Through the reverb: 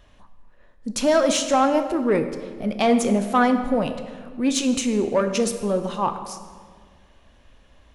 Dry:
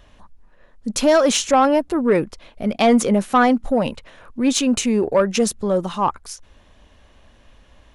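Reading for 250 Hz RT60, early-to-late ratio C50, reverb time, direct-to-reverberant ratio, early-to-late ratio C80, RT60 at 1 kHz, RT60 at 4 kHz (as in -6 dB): 2.1 s, 9.5 dB, 1.7 s, 7.5 dB, 10.5 dB, 1.6 s, 1.2 s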